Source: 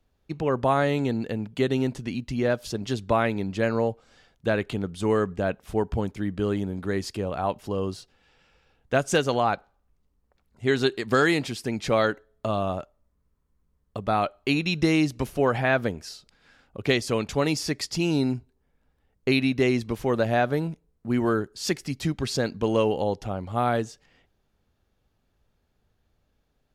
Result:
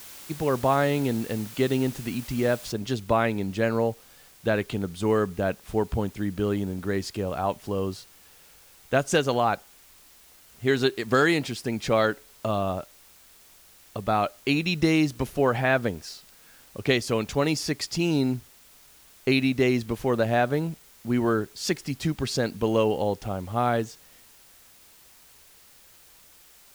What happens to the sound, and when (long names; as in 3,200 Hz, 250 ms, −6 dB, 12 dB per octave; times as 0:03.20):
0:02.72: noise floor change −44 dB −54 dB